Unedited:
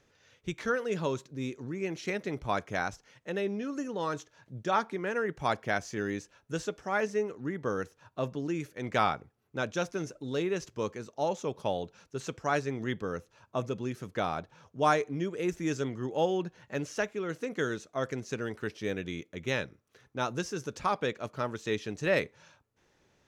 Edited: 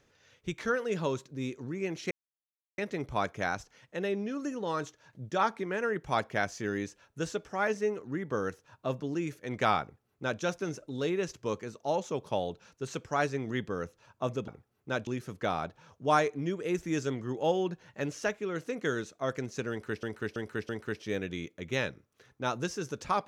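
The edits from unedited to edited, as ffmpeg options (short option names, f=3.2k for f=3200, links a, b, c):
-filter_complex "[0:a]asplit=7[a][b][c][d][e][f][g];[a]atrim=end=2.11,asetpts=PTS-STARTPTS,afade=t=out:st=2.106:d=0.004:c=hsin,apad=pad_dur=0.67[h];[b]atrim=start=2.11:end=13.812,asetpts=PTS-STARTPTS,afade=t=in:d=0.004:c=hsin[i];[c]atrim=start=9.148:end=9.742[j];[d]atrim=start=13.808:end=18.772[k];[e]atrim=start=18.438:end=18.772[l];[f]atrim=start=18.438:end=18.772[m];[g]atrim=start=18.438[n];[h][i]concat=n=2:v=0:a=1[o];[o][j]acrossfade=d=0.004:c1=hsin:c2=hsin[p];[p][k]acrossfade=d=0.004:c1=hsin:c2=hsin[q];[q][l]acrossfade=d=0.004:c1=hsin:c2=hsin[r];[r][m]acrossfade=d=0.004:c1=hsin:c2=hsin[s];[s][n]acrossfade=d=0.004:c1=hsin:c2=hsin"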